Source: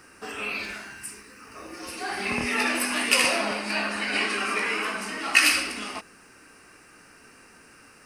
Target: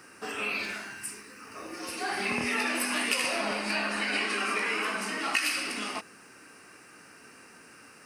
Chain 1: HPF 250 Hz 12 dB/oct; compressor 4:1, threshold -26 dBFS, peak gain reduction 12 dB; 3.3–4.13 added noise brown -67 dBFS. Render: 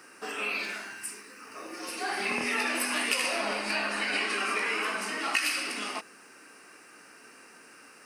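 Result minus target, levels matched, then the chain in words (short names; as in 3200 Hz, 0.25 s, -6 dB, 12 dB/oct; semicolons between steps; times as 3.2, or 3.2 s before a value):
125 Hz band -5.5 dB
HPF 110 Hz 12 dB/oct; compressor 4:1, threshold -26 dBFS, peak gain reduction 12 dB; 3.3–4.13 added noise brown -67 dBFS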